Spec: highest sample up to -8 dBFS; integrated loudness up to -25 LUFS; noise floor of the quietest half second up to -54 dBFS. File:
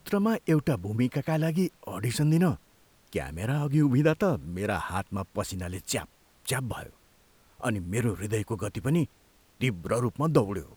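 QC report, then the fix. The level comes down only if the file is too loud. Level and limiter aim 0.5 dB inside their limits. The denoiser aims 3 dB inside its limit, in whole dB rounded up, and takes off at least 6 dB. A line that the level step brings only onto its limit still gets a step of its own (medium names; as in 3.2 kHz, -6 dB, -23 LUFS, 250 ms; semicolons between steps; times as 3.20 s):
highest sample -9.5 dBFS: pass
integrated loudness -28.5 LUFS: pass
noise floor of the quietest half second -61 dBFS: pass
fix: none needed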